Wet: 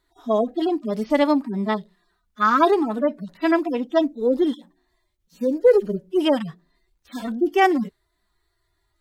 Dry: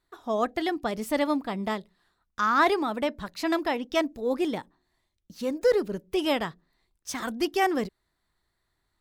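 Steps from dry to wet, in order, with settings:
harmonic-percussive split with one part muted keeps harmonic
level +7.5 dB

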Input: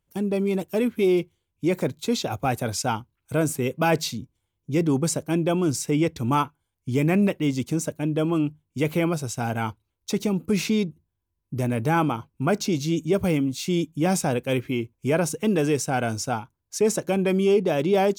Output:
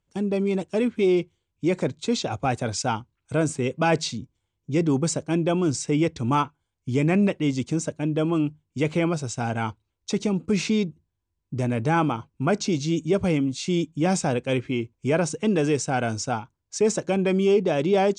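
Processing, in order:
Butterworth low-pass 8,500 Hz 48 dB per octave

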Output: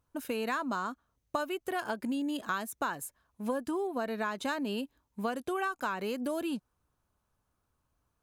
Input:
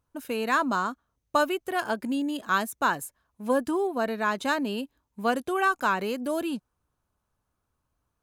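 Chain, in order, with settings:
downward compressor, threshold −30 dBFS, peak gain reduction 11.5 dB

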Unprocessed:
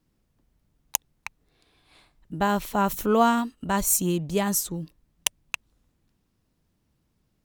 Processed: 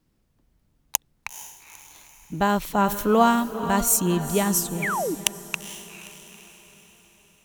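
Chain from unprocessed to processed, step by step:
feedback delay with all-pass diffusion 461 ms, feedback 50%, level −11.5 dB
sound drawn into the spectrogram fall, 0:04.82–0:05.15, 270–2,500 Hz −28 dBFS
level +2 dB

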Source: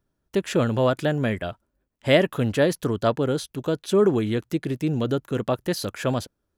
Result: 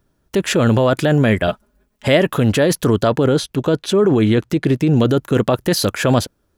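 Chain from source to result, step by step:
0:01.47–0:02.08: comb filter 4.8 ms, depth 81%
0:03.26–0:04.97: high-shelf EQ 7,700 Hz −9 dB
in parallel at +1.5 dB: compressor whose output falls as the input rises −24 dBFS, ratio −0.5
on the sum: level +3 dB

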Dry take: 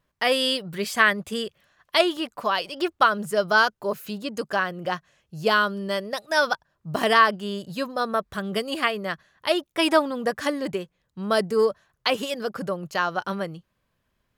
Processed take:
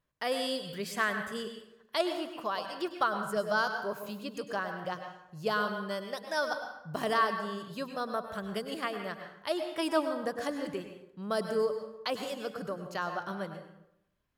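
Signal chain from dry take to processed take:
dense smooth reverb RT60 0.81 s, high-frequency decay 0.65×, pre-delay 90 ms, DRR 6.5 dB
dynamic equaliser 2,500 Hz, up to −7 dB, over −35 dBFS, Q 1.3
level −9 dB

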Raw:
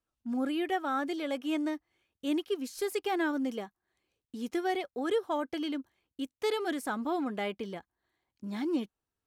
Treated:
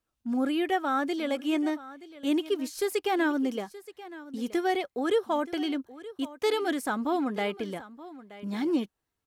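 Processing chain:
single-tap delay 925 ms −17 dB
level +4 dB

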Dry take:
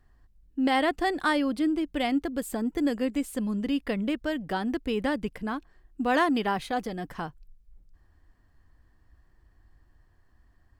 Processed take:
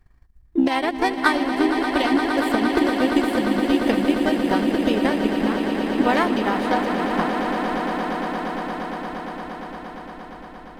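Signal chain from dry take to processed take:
pitch-shifted copies added +4 semitones −7 dB
transient designer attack +11 dB, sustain −4 dB
echo that builds up and dies away 116 ms, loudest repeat 8, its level −10.5 dB

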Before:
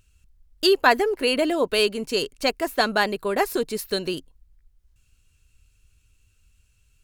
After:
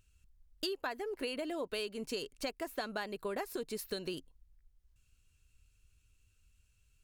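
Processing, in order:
downward compressor 16 to 1, threshold −26 dBFS, peak gain reduction 16 dB
level −8 dB

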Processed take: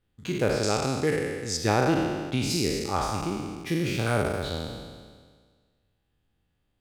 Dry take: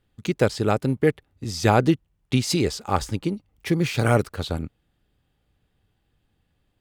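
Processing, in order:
peak hold with a decay on every bin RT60 1.67 s
0:00.63–0:01.57: parametric band 6,800 Hz +14.5 dB 1.2 octaves
level −8 dB

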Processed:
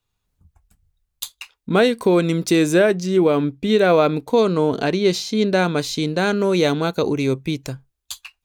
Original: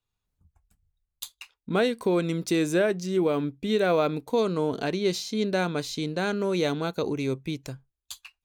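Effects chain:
0:02.95–0:05.65: high-shelf EQ 7,300 Hz −5 dB
level +8 dB

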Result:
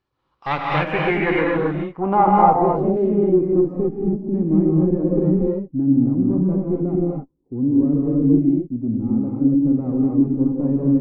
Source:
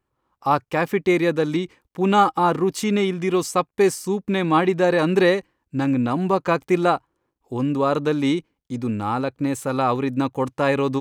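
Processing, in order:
one-sided soft clipper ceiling −22.5 dBFS
low-pass filter sweep 4,500 Hz → 280 Hz, 0:00.09–0:03.68
reverb whose tail is shaped and stops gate 290 ms rising, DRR −2.5 dB
level −2 dB

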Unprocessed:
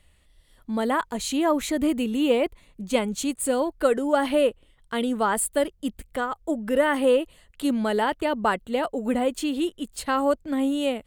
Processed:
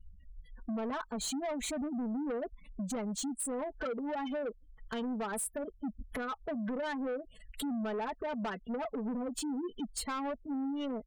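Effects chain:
gate on every frequency bin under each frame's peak −15 dB strong
high-shelf EQ 5,900 Hz +5 dB
comb filter 4.6 ms, depth 79%
downward compressor 4 to 1, threshold −37 dBFS, peak gain reduction 19 dB
soft clipping −37 dBFS, distortion −12 dB
level +5 dB

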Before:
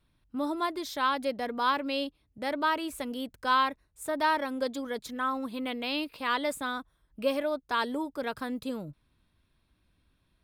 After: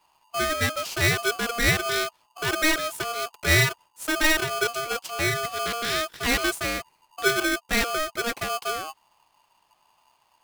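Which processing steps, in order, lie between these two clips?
ring modulator with a square carrier 940 Hz
level +5.5 dB

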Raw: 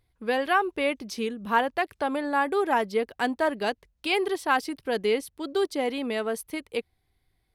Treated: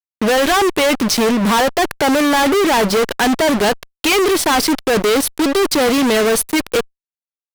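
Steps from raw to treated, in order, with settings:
fuzz pedal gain 48 dB, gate −42 dBFS
power curve on the samples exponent 0.7

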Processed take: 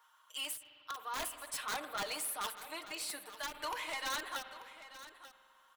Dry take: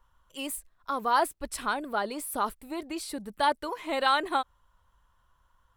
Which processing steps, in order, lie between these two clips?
high-pass filter 1,100 Hz 12 dB per octave
comb filter 6.5 ms, depth 70%
reversed playback
downward compressor 5 to 1, threshold −36 dBFS, peak gain reduction 14 dB
reversed playback
wrap-around overflow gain 30 dB
amplitude tremolo 0.51 Hz, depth 49%
soft clipping −40 dBFS, distortion −11 dB
on a send: single-tap delay 888 ms −14.5 dB
on the sum: spring reverb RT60 2.2 s, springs 49 ms, chirp 25 ms, DRR 11 dB
every ending faded ahead of time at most 160 dB per second
level +6.5 dB

